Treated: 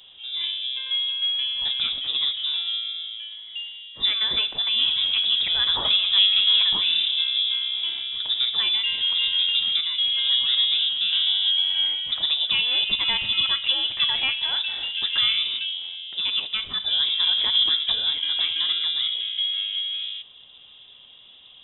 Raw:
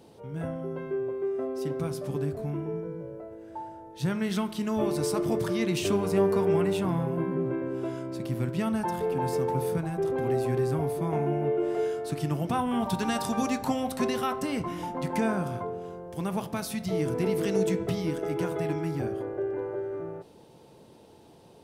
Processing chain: 0.86–3.41 s: treble shelf 2.3 kHz +10 dB; frequency inversion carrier 3.7 kHz; trim +5 dB

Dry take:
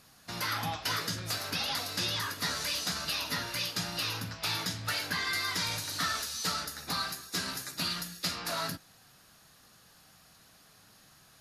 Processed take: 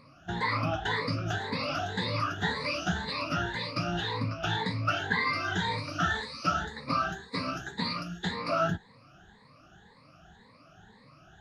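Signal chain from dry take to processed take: drifting ripple filter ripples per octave 0.96, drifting +1.9 Hz, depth 22 dB; tape spacing loss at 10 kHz 33 dB; trim +4.5 dB

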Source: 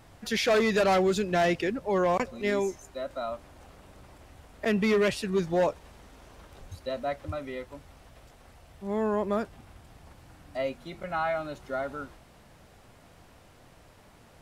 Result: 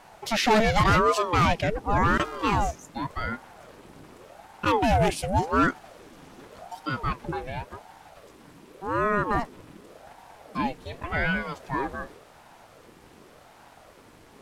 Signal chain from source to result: 2.01–2.70 s: mains buzz 400 Hz, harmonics 38, -42 dBFS -8 dB/octave; 4.83–5.43 s: fifteen-band graphic EQ 1.6 kHz -7 dB, 4 kHz -5 dB, 10 kHz +5 dB; ring modulator with a swept carrier 530 Hz, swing 60%, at 0.88 Hz; trim +6 dB

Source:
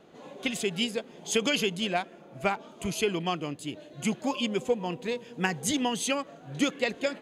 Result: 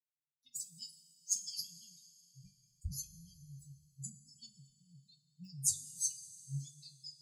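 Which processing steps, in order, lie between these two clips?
expander on every frequency bin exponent 3; Chebyshev band-stop 140–4700 Hz, order 5; two-slope reverb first 0.2 s, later 3 s, from -21 dB, DRR 1.5 dB; trim +3 dB

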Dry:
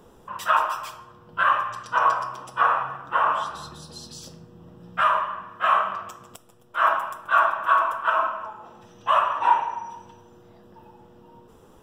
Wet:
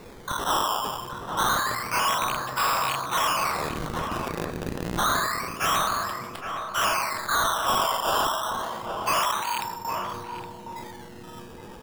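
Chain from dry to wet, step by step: rattle on loud lows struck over -44 dBFS, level -17 dBFS; 9.31–9.85 s: amplifier tone stack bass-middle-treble 5-5-5; in parallel at +2 dB: compression, threshold -32 dBFS, peak gain reduction 17 dB; 5.00–5.72 s: on the sum: frequency shift +40 Hz; decimation with a swept rate 14×, swing 100% 0.28 Hz; saturation -20.5 dBFS, distortion -8 dB; echo from a far wall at 140 m, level -6 dB; decay stretcher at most 38 dB/s

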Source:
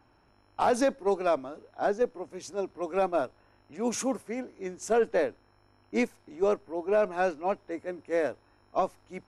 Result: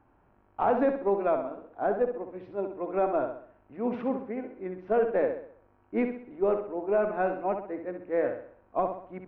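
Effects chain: Gaussian low-pass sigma 3.9 samples; flutter echo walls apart 11.2 m, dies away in 0.55 s

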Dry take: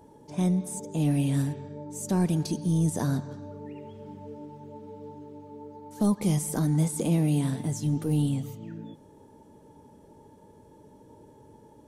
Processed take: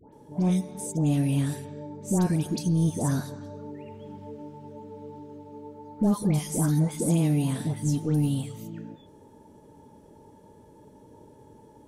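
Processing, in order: phase dispersion highs, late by 128 ms, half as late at 1.3 kHz; trim +1 dB

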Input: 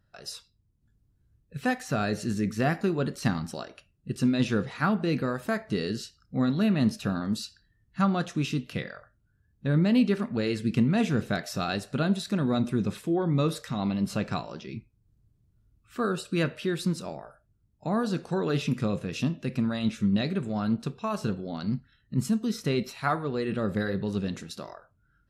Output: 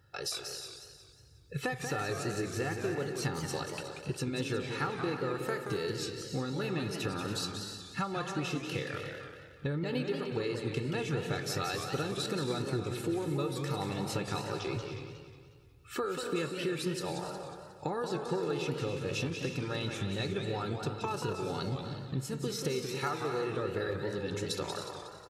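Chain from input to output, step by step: high-pass 88 Hz; comb 2.3 ms, depth 82%; compression, threshold -39 dBFS, peak gain reduction 18.5 dB; on a send: multi-tap echo 248/277/306 ms -14/-11.5/-12.5 dB; on the sum: modulated delay 181 ms, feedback 51%, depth 174 cents, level -7 dB; trim +6 dB

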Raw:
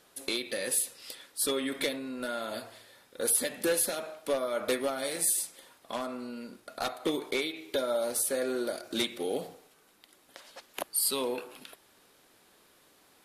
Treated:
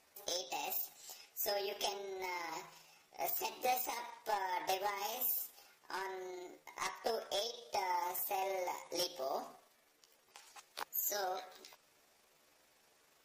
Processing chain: rotating-head pitch shifter +7 st; trim -5.5 dB; MP3 56 kbps 44.1 kHz

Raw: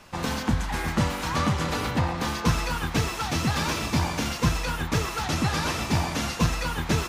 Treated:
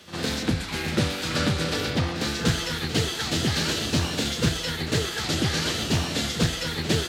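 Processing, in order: high-pass 67 Hz 24 dB/octave; formant shift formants +3 st; fifteen-band graphic EQ 400 Hz +4 dB, 1 kHz -9 dB, 4 kHz +8 dB; pre-echo 55 ms -12 dB; loudspeaker Doppler distortion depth 0.24 ms

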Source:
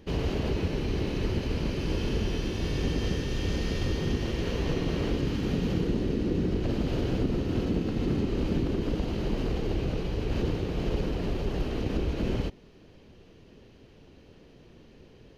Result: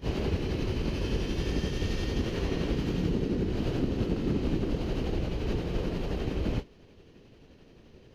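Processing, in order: granular stretch 0.53×, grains 175 ms

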